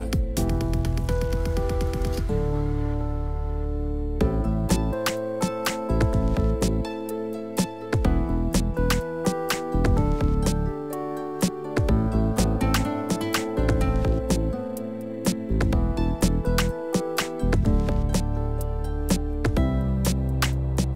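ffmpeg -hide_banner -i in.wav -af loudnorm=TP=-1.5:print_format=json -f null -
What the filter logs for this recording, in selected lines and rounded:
"input_i" : "-25.4",
"input_tp" : "-7.3",
"input_lra" : "1.7",
"input_thresh" : "-35.4",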